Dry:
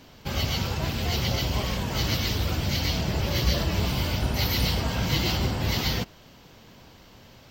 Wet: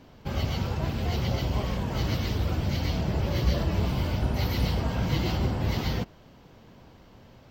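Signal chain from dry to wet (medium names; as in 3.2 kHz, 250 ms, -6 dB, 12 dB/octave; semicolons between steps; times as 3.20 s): treble shelf 2 kHz -11.5 dB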